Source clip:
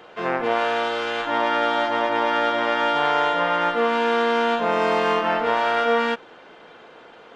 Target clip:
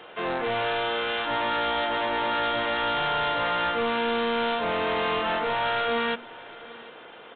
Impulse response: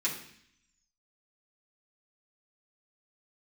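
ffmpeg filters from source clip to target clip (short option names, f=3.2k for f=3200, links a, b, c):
-af "aemphasis=mode=production:type=75fm,bandreject=f=60:t=h:w=6,bandreject=f=120:t=h:w=6,bandreject=f=180:t=h:w=6,bandreject=f=240:t=h:w=6,aresample=8000,asoftclip=type=tanh:threshold=-22.5dB,aresample=44100,aecho=1:1:750:0.0944"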